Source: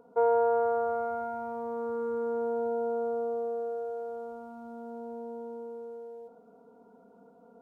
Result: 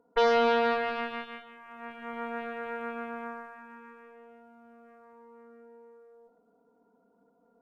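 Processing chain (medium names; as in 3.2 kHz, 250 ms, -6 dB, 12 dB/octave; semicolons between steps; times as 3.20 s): small resonant body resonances 300/1000/1400 Hz, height 7 dB, ringing for 85 ms; Chebyshev shaper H 4 -16 dB, 5 -33 dB, 7 -14 dB, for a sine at -15.5 dBFS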